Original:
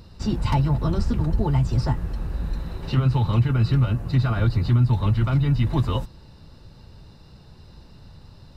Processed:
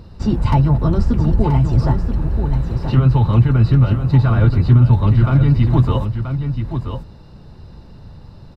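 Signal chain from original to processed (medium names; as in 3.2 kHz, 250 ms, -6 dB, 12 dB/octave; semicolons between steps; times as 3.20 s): treble shelf 2.1 kHz -10 dB; on a send: delay 980 ms -8 dB; on the sum: trim +7 dB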